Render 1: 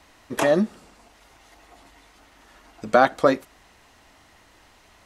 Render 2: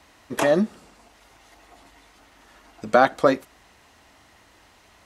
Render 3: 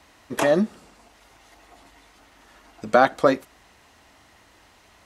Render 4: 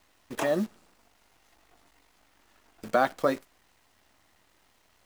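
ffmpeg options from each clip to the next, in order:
ffmpeg -i in.wav -af "highpass=40" out.wav
ffmpeg -i in.wav -af anull out.wav
ffmpeg -i in.wav -af "acrusher=bits=7:dc=4:mix=0:aa=0.000001,volume=-7.5dB" out.wav

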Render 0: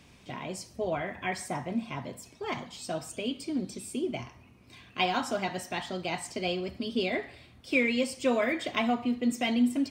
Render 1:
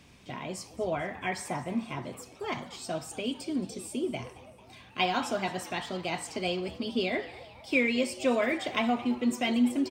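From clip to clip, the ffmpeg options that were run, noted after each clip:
ffmpeg -i in.wav -filter_complex "[0:a]asplit=6[link_01][link_02][link_03][link_04][link_05][link_06];[link_02]adelay=222,afreqshift=130,volume=-18dB[link_07];[link_03]adelay=444,afreqshift=260,volume=-23dB[link_08];[link_04]adelay=666,afreqshift=390,volume=-28.1dB[link_09];[link_05]adelay=888,afreqshift=520,volume=-33.1dB[link_10];[link_06]adelay=1110,afreqshift=650,volume=-38.1dB[link_11];[link_01][link_07][link_08][link_09][link_10][link_11]amix=inputs=6:normalize=0" out.wav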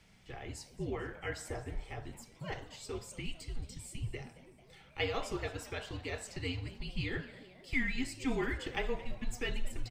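ffmpeg -i in.wav -af "afreqshift=-260,volume=-6.5dB" out.wav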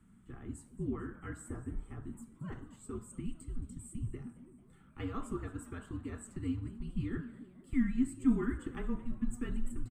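ffmpeg -i in.wav -af "firequalizer=gain_entry='entry(150,0);entry(230,10);entry(510,-14);entry(760,-14);entry(1200,1);entry(2200,-18);entry(3200,-17);entry(5200,-27);entry(8200,-1);entry(13000,-10)':delay=0.05:min_phase=1" out.wav

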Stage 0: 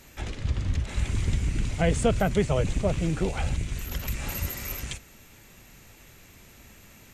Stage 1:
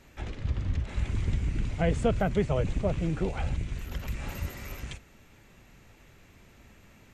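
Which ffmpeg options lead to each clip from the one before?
ffmpeg -i in.wav -af "lowpass=frequency=2500:poles=1,volume=-2.5dB" out.wav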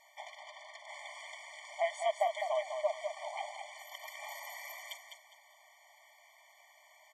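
ffmpeg -i in.wav -af "aecho=1:1:204|408|612|816:0.473|0.132|0.0371|0.0104,afftfilt=real='re*eq(mod(floor(b*sr/1024/600),2),1)':imag='im*eq(mod(floor(b*sr/1024/600),2),1)':win_size=1024:overlap=0.75,volume=1dB" out.wav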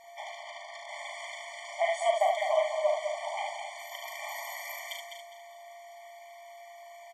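ffmpeg -i in.wav -filter_complex "[0:a]aeval=exprs='val(0)+0.00158*sin(2*PI*690*n/s)':channel_layout=same,asplit=2[link_01][link_02];[link_02]aecho=0:1:38|74:0.562|0.562[link_03];[link_01][link_03]amix=inputs=2:normalize=0,volume=4dB" out.wav

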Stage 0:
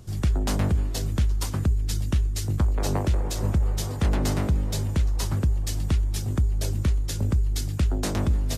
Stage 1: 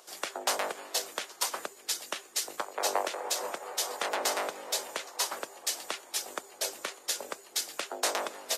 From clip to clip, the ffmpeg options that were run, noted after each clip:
ffmpeg -i in.wav -af "highpass=frequency=530:width=0.5412,highpass=frequency=530:width=1.3066,volume=3.5dB" out.wav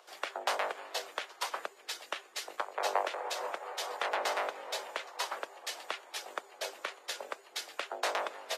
ffmpeg -i in.wav -filter_complex "[0:a]acrossover=split=400 3800:gain=0.178 1 0.2[link_01][link_02][link_03];[link_01][link_02][link_03]amix=inputs=3:normalize=0" out.wav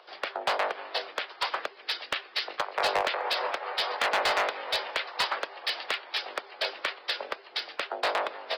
ffmpeg -i in.wav -filter_complex "[0:a]aresample=11025,aresample=44100,acrossover=split=1300[link_01][link_02];[link_02]dynaudnorm=framelen=290:gausssize=11:maxgain=6dB[link_03];[link_01][link_03]amix=inputs=2:normalize=0,asoftclip=type=hard:threshold=-25.5dB,volume=5.5dB" out.wav

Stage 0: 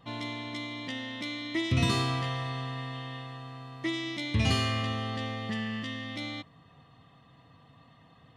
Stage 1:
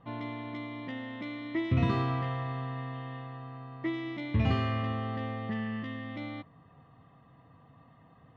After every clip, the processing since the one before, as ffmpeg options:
ffmpeg -i in.wav -af "lowpass=1700" out.wav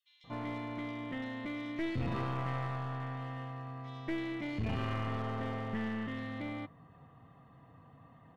ffmpeg -i in.wav -filter_complex "[0:a]alimiter=level_in=1.5dB:limit=-24dB:level=0:latency=1:release=13,volume=-1.5dB,acrossover=split=3700[link_01][link_02];[link_01]adelay=240[link_03];[link_03][link_02]amix=inputs=2:normalize=0,aeval=exprs='clip(val(0),-1,0.0133)':channel_layout=same" out.wav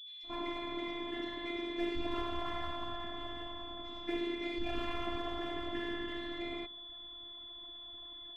ffmpeg -i in.wav -af "afftfilt=real='hypot(re,im)*cos(2*PI*random(0))':imag='hypot(re,im)*sin(2*PI*random(1))':win_size=512:overlap=0.75,aeval=exprs='val(0)+0.002*sin(2*PI*3400*n/s)':channel_layout=same,afftfilt=real='hypot(re,im)*cos(PI*b)':imag='0':win_size=512:overlap=0.75,volume=9dB" out.wav

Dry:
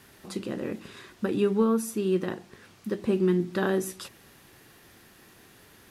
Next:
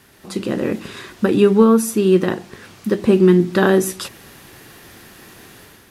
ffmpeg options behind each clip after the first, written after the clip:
ffmpeg -i in.wav -af "dynaudnorm=framelen=100:gausssize=7:maxgain=8.5dB,volume=3.5dB" out.wav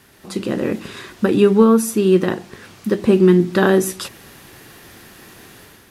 ffmpeg -i in.wav -af anull out.wav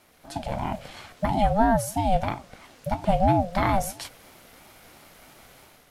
ffmpeg -i in.wav -af "aeval=exprs='val(0)*sin(2*PI*420*n/s+420*0.2/3*sin(2*PI*3*n/s))':channel_layout=same,volume=-5.5dB" out.wav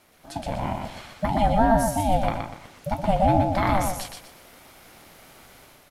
ffmpeg -i in.wav -af "aecho=1:1:121|242|363|484:0.596|0.173|0.0501|0.0145" out.wav

